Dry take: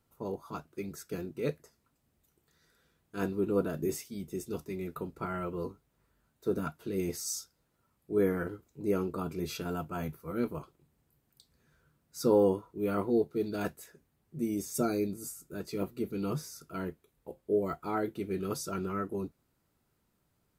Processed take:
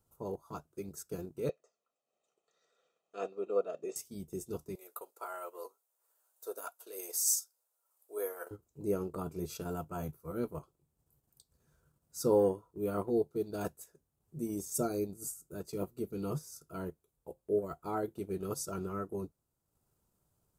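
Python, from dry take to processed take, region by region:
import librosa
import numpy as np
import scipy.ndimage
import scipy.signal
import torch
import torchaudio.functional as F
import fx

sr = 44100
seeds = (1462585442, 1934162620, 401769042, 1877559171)

y = fx.chain(x, sr, fx.cabinet(low_hz=300.0, low_slope=24, high_hz=5900.0, hz=(1600.0, 2600.0, 5000.0), db=(-5, 5, -9)),
    fx.comb(ms=1.6, depth=0.65), at=(1.49, 3.96))
y = fx.chain(y, sr, fx.highpass(hz=520.0, slope=24),
    fx.high_shelf(hz=7300.0, db=11.5), at=(4.75, 8.51))
y = fx.graphic_eq_10(y, sr, hz=(250, 2000, 4000, 8000), db=(-6, -11, -5, 4))
y = fx.transient(y, sr, attack_db=0, sustain_db=-7)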